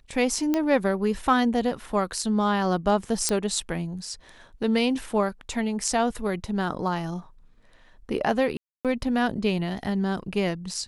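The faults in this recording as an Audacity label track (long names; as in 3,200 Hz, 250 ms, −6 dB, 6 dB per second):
0.540000	0.540000	click −11 dBFS
3.290000	3.290000	click −9 dBFS
8.570000	8.850000	drop-out 277 ms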